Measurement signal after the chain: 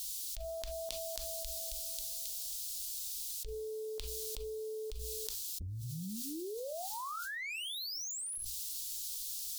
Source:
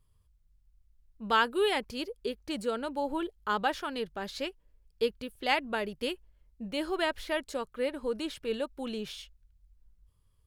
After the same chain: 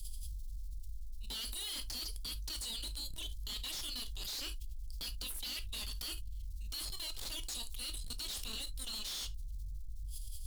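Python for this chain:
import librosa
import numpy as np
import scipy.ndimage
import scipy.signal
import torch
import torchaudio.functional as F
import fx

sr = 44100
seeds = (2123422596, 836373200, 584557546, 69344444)

y = scipy.signal.sosfilt(scipy.signal.cheby2(4, 50, [130.0, 1600.0], 'bandstop', fs=sr, output='sos'), x)
y = fx.tube_stage(y, sr, drive_db=57.0, bias=0.25)
y = fx.hum_notches(y, sr, base_hz=60, count=2)
y = fx.rev_gated(y, sr, seeds[0], gate_ms=90, shape='falling', drr_db=11.0)
y = fx.env_flatten(y, sr, amount_pct=100)
y = y * librosa.db_to_amplitude(16.0)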